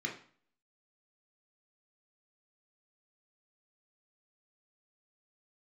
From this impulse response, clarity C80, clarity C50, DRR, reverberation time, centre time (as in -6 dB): 13.5 dB, 9.0 dB, 0.0 dB, 0.45 s, 23 ms